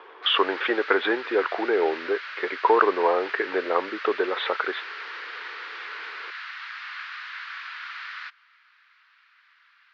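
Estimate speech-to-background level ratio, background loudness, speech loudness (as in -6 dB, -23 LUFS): 11.0 dB, -35.5 LUFS, -24.5 LUFS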